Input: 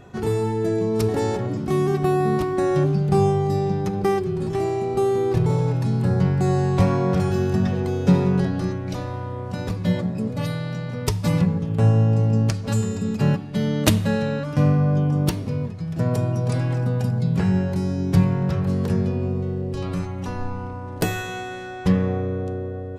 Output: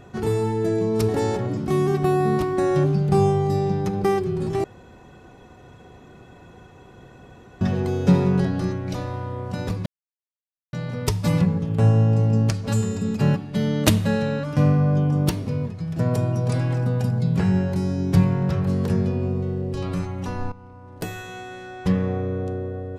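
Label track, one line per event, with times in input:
4.640000	7.610000	room tone
9.860000	10.730000	mute
20.520000	22.450000	fade in, from -15.5 dB

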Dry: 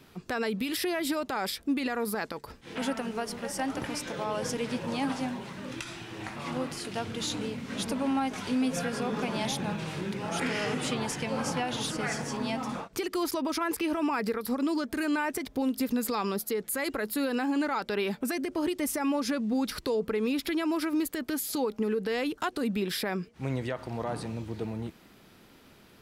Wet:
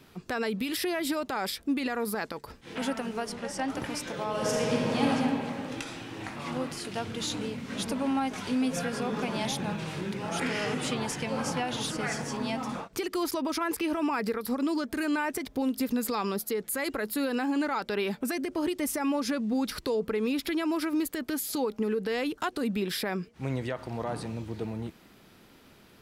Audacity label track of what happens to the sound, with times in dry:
3.260000	3.670000	LPF 12000 Hz -> 6500 Hz
4.290000	5.080000	reverb throw, RT60 2.7 s, DRR -3.5 dB

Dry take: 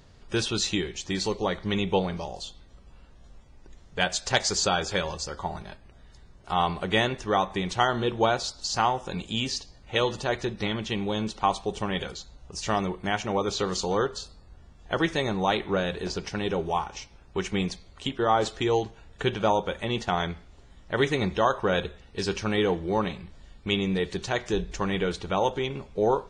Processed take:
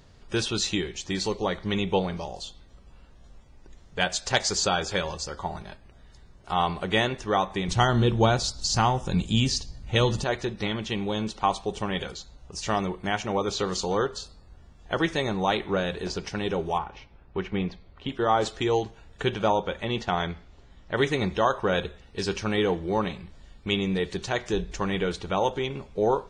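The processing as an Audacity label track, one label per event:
7.680000	10.240000	tone controls bass +12 dB, treble +5 dB
16.780000	18.090000	air absorption 320 m
19.480000	20.970000	LPF 6100 Hz

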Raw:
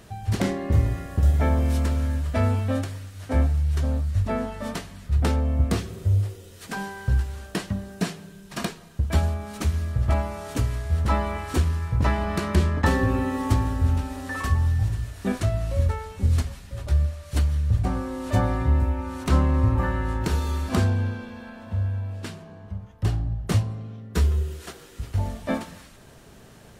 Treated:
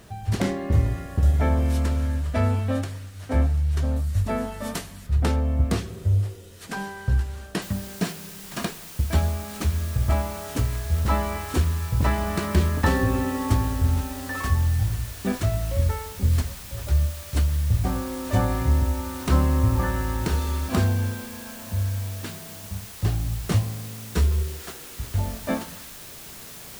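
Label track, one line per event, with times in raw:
3.960000	5.070000	high shelf 7500 Hz +11.5 dB
7.620000	7.620000	noise floor step -65 dB -42 dB

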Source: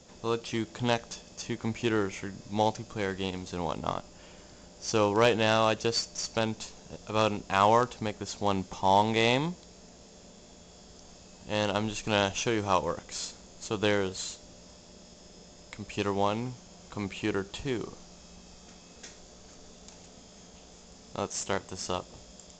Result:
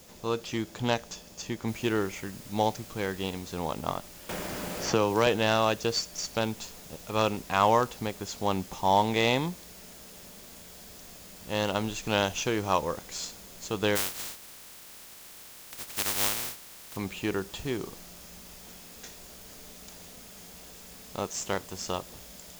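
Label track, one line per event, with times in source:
1.680000	1.680000	noise floor step -57 dB -50 dB
4.290000	5.270000	three-band squash depth 70%
13.950000	16.950000	spectral contrast lowered exponent 0.15

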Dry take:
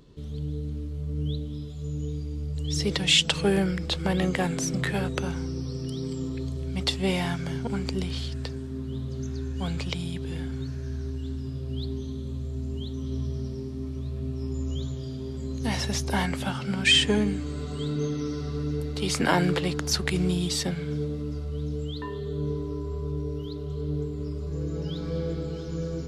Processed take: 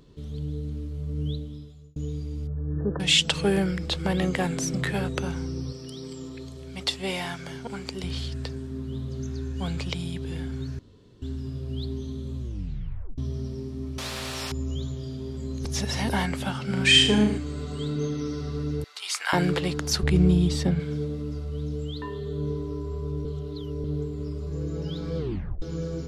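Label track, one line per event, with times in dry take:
1.290000	1.960000	fade out
2.470000	3.000000	brick-wall FIR low-pass 1800 Hz
5.720000	8.040000	low shelf 290 Hz -11.5 dB
10.790000	11.220000	room tone
12.390000	12.390000	tape stop 0.79 s
13.980000	14.520000	spectral compressor 4:1
15.650000	16.090000	reverse
16.650000	17.380000	flutter echo walls apart 6.5 m, dies away in 0.48 s
18.840000	19.330000	HPF 960 Hz 24 dB/oct
20.030000	20.800000	tilt -2.5 dB/oct
23.250000	23.840000	reverse
25.180000	25.180000	tape stop 0.44 s

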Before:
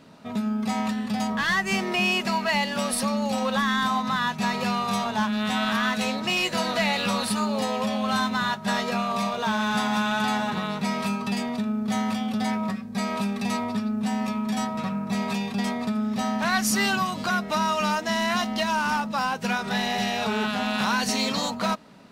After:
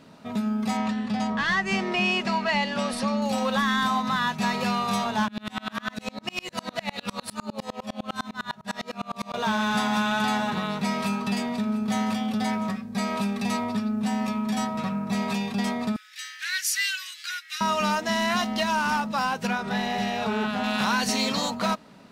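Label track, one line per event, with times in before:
0.770000	3.220000	air absorption 73 m
5.280000	9.340000	dB-ramp tremolo swelling 9.9 Hz, depth 33 dB
10.420000	12.770000	echo 0.696 s -16.5 dB
15.960000	17.610000	steep high-pass 1600 Hz 48 dB/oct
19.470000	20.640000	high shelf 2600 Hz -7.5 dB

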